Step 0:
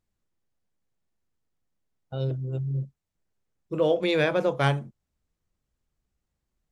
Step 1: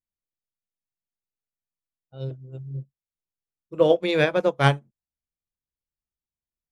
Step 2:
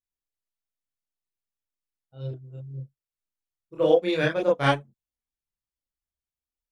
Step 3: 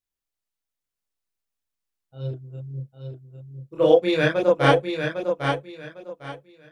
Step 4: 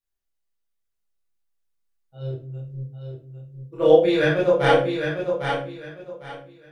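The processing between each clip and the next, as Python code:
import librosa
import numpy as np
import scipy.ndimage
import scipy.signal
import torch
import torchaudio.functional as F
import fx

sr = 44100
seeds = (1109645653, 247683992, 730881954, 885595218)

y1 = fx.upward_expand(x, sr, threshold_db=-36.0, expansion=2.5)
y1 = F.gain(torch.from_numpy(y1), 6.5).numpy()
y2 = fx.chorus_voices(y1, sr, voices=4, hz=0.79, base_ms=30, depth_ms=2.1, mix_pct=55)
y3 = fx.echo_feedback(y2, sr, ms=803, feedback_pct=24, wet_db=-6.0)
y3 = F.gain(torch.from_numpy(y3), 3.5).numpy()
y4 = fx.room_shoebox(y3, sr, seeds[0], volume_m3=32.0, walls='mixed', distance_m=0.67)
y4 = F.gain(torch.from_numpy(y4), -4.5).numpy()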